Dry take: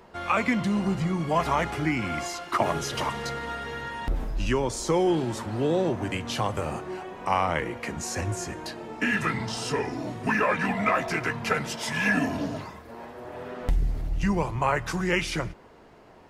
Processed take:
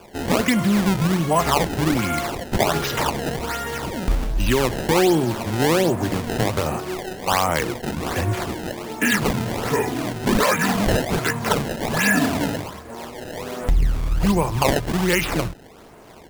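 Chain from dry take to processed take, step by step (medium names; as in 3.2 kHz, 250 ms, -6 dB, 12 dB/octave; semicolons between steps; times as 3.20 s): in parallel at +2 dB: peak limiter -17.5 dBFS, peak gain reduction 8.5 dB; on the sum: decimation with a swept rate 22×, swing 160% 1.3 Hz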